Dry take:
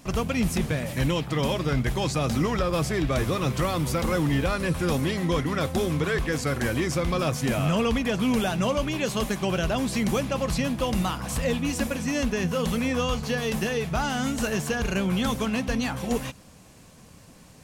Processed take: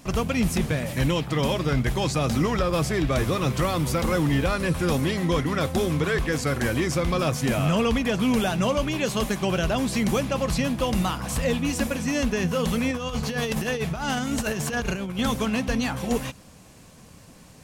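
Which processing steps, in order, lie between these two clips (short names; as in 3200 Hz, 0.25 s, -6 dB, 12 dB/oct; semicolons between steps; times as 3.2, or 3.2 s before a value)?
12.91–15.19 negative-ratio compressor -28 dBFS, ratio -0.5; gain +1.5 dB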